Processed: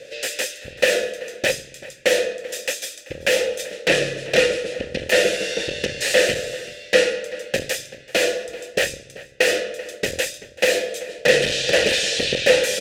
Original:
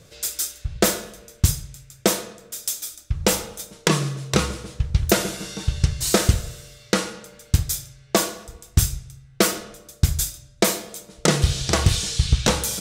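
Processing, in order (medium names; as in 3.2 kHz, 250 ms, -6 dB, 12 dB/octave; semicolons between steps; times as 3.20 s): octave divider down 2 oct, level -1 dB; treble shelf 3 kHz +11 dB; sine folder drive 16 dB, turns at 4 dBFS; vowel filter e; bass shelf 190 Hz -3 dB; echo from a far wall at 66 m, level -17 dB; trim +1 dB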